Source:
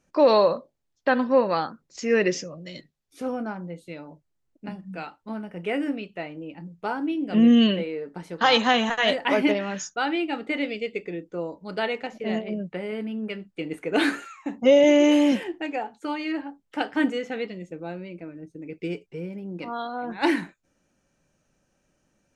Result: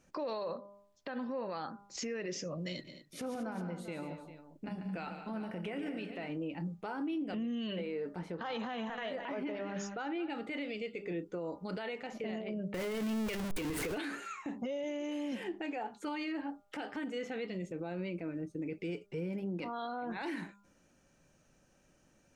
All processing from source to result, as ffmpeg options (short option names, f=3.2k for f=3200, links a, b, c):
-filter_complex "[0:a]asettb=1/sr,asplit=3[a][b][c];[a]atrim=end=2.734[d];[b]atrim=start=2.73:end=6.3,asetpts=PTS-STARTPTS,afade=t=in:d=0.004:c=qsin,afade=t=out:st=3.566:d=0.004:c=qsin,acompressor=threshold=-39dB:ratio=4:attack=3.2:release=140:knee=1:detection=peak,aecho=1:1:115|141|185|218|399:0.126|0.335|0.133|0.224|0.211,atrim=end_sample=157437[e];[c]atrim=start=6.296[f];[d][e]acrossfade=d=0.004:c1=hsin:c2=qsin[g];[g][f]acrossfade=d=0.004:c1=qsin:c2=hsin,asettb=1/sr,asplit=3[h][i][j];[h]atrim=end=8.194[k];[i]atrim=start=8.19:end=10.3,asetpts=PTS-STARTPTS,afade=t=in:d=0.004:c=qsin,afade=t=out:st=2.106:d=0.004:c=qsin,lowpass=f=1.6k:p=1,aecho=1:1:201:0.141,atrim=end_sample=93051[l];[j]atrim=start=10.296[m];[k][l]acrossfade=d=0.004:c1=hsin:c2=qsin[n];[n][m]acrossfade=d=0.004:c1=qsin:c2=hsin,asettb=1/sr,asplit=3[o][p][q];[o]atrim=end=12.744[r];[p]atrim=start=12.74:end=13.98,asetpts=PTS-STARTPTS,afade=t=in:d=0.004:c=qsin,afade=t=out:st=1.236:d=0.004:c=qsin,aeval=exprs='val(0)+0.5*0.0422*sgn(val(0))':c=same,asubboost=boost=6.5:cutoff=120[s];[q]atrim=start=13.976[t];[r][s]acrossfade=d=0.004:c1=hsin:c2=qsin[u];[u][t]acrossfade=d=0.004:c1=qsin:c2=hsin,bandreject=f=201.2:t=h:w=4,bandreject=f=402.4:t=h:w=4,bandreject=f=603.6:t=h:w=4,bandreject=f=804.8:t=h:w=4,bandreject=f=1.006k:t=h:w=4,bandreject=f=1.2072k:t=h:w=4,bandreject=f=1.4084k:t=h:w=4,acompressor=threshold=-33dB:ratio=6,alimiter=level_in=8.5dB:limit=-24dB:level=0:latency=1:release=33,volume=-8.5dB,volume=2dB"